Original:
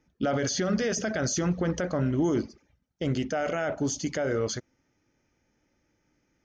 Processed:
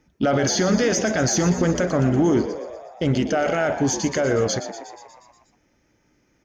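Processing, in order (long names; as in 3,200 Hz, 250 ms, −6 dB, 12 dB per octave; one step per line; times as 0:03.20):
in parallel at −8 dB: asymmetric clip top −27 dBFS
on the sum: echo with shifted repeats 120 ms, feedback 63%, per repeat +75 Hz, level −11.5 dB
level +4.5 dB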